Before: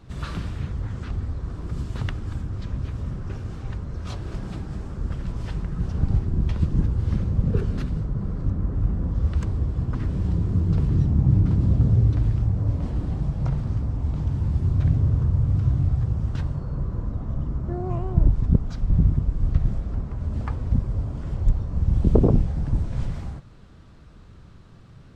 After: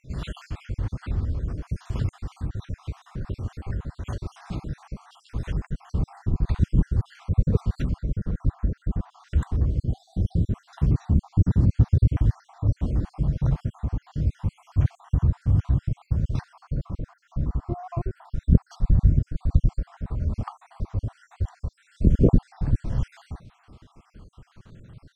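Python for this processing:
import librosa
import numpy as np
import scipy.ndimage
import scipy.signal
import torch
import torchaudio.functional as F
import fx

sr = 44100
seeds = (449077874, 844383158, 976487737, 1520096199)

y = fx.spec_dropout(x, sr, seeds[0], share_pct=56)
y = fx.brickwall_bandstop(y, sr, low_hz=820.0, high_hz=2900.0, at=(9.79, 10.49), fade=0.02)
y = y * librosa.db_to_amplitude(2.0)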